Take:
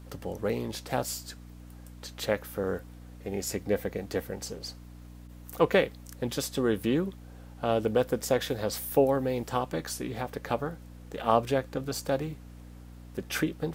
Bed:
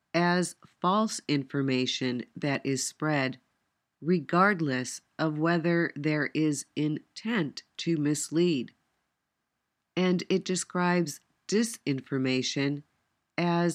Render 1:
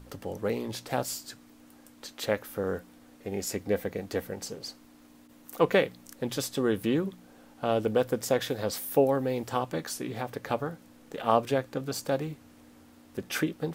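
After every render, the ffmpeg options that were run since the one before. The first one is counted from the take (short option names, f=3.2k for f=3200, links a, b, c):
-af "bandreject=f=60:t=h:w=4,bandreject=f=120:t=h:w=4,bandreject=f=180:t=h:w=4"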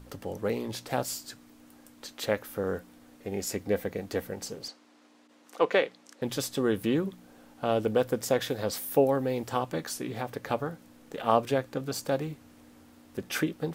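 -filter_complex "[0:a]asettb=1/sr,asplit=3[a][b][c];[a]atrim=end=4.684[d];[b]atrim=start=4.68:end=6.22,asetpts=PTS-STARTPTS,afade=t=in:d=0.004:c=qsin,afade=t=out:st=1.536:d=0.004:c=qsin,highpass=350,lowpass=6.4k[e];[c]atrim=start=6.216[f];[d][e]acrossfade=d=0.004:c1=hsin:c2=qsin[g];[g][f]acrossfade=d=0.004:c1=qsin:c2=hsin"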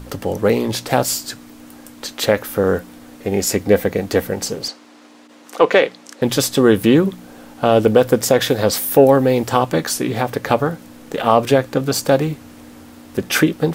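-af "acontrast=53,alimiter=level_in=8.5dB:limit=-1dB:release=50:level=0:latency=1"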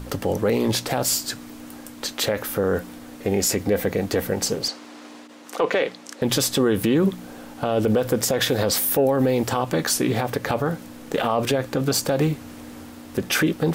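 -af "alimiter=limit=-11dB:level=0:latency=1:release=43,areverse,acompressor=mode=upward:threshold=-35dB:ratio=2.5,areverse"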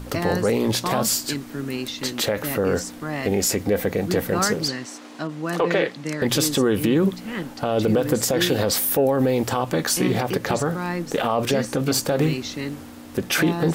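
-filter_complex "[1:a]volume=-1.5dB[a];[0:a][a]amix=inputs=2:normalize=0"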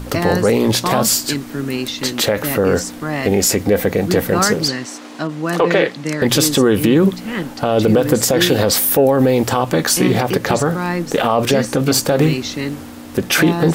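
-af "volume=6.5dB,alimiter=limit=-2dB:level=0:latency=1"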